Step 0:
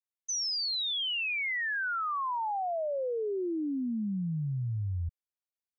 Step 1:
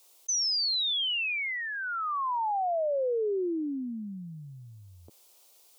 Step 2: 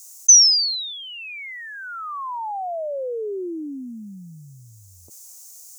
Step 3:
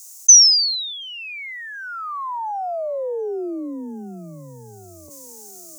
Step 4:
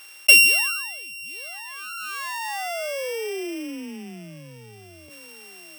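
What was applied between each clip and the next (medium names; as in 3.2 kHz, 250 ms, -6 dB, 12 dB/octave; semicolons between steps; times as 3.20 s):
high-pass 370 Hz 24 dB/octave; peaking EQ 1.7 kHz -15 dB 0.92 oct; level flattener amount 50%; trim +5 dB
resonant high shelf 4.6 kHz +13 dB, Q 3; trim +1 dB
feedback echo behind a band-pass 725 ms, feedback 67%, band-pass 440 Hz, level -17 dB; trim +2 dB
sorted samples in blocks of 16 samples; trim -3.5 dB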